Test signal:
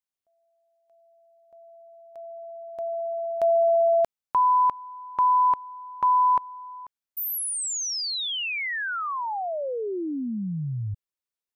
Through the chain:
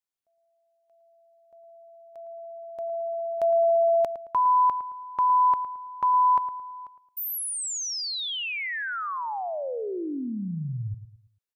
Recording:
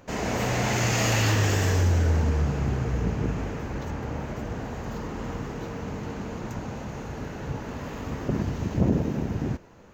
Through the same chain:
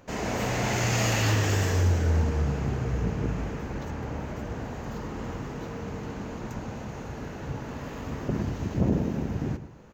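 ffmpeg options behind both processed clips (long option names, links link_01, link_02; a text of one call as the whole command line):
ffmpeg -i in.wav -filter_complex "[0:a]asplit=2[link_01][link_02];[link_02]adelay=110,lowpass=frequency=1800:poles=1,volume=-11.5dB,asplit=2[link_03][link_04];[link_04]adelay=110,lowpass=frequency=1800:poles=1,volume=0.38,asplit=2[link_05][link_06];[link_06]adelay=110,lowpass=frequency=1800:poles=1,volume=0.38,asplit=2[link_07][link_08];[link_08]adelay=110,lowpass=frequency=1800:poles=1,volume=0.38[link_09];[link_01][link_03][link_05][link_07][link_09]amix=inputs=5:normalize=0,volume=-2dB" out.wav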